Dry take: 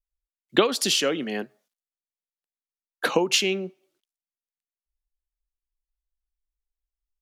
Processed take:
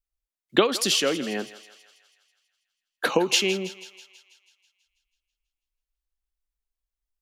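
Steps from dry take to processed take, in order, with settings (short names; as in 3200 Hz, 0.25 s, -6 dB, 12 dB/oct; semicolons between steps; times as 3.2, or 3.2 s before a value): 3.08–3.63 crackle 130/s -> 48/s -51 dBFS; on a send: thinning echo 0.163 s, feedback 60%, high-pass 600 Hz, level -15 dB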